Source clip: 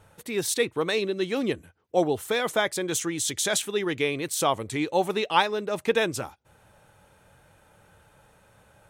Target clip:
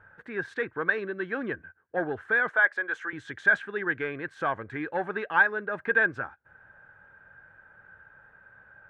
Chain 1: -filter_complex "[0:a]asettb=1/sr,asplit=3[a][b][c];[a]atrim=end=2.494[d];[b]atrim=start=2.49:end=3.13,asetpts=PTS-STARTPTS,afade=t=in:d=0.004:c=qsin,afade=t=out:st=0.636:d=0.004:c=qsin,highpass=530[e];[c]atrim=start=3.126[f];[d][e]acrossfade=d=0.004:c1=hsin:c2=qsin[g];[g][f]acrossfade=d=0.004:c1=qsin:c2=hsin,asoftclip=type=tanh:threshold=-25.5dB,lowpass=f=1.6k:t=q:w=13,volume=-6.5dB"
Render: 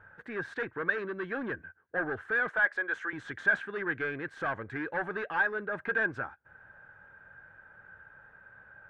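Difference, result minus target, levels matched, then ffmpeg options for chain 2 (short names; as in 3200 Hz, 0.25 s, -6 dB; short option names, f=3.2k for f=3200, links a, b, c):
soft clip: distortion +11 dB
-filter_complex "[0:a]asettb=1/sr,asplit=3[a][b][c];[a]atrim=end=2.494[d];[b]atrim=start=2.49:end=3.13,asetpts=PTS-STARTPTS,afade=t=in:d=0.004:c=qsin,afade=t=out:st=0.636:d=0.004:c=qsin,highpass=530[e];[c]atrim=start=3.126[f];[d][e]acrossfade=d=0.004:c1=hsin:c2=qsin[g];[g][f]acrossfade=d=0.004:c1=qsin:c2=hsin,asoftclip=type=tanh:threshold=-14.5dB,lowpass=f=1.6k:t=q:w=13,volume=-6.5dB"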